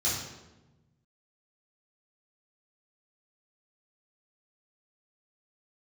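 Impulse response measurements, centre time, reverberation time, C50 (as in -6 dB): 61 ms, 1.1 s, 1.5 dB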